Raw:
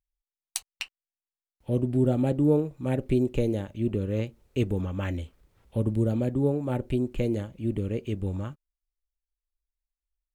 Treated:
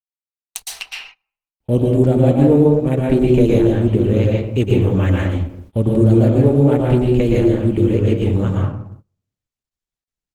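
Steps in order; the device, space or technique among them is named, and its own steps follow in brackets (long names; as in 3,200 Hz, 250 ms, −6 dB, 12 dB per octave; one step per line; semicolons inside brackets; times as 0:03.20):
speakerphone in a meeting room (convolution reverb RT60 0.75 s, pre-delay 109 ms, DRR −2 dB; far-end echo of a speakerphone 120 ms, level −29 dB; automatic gain control gain up to 12.5 dB; noise gate −37 dBFS, range −24 dB; Opus 16 kbit/s 48,000 Hz)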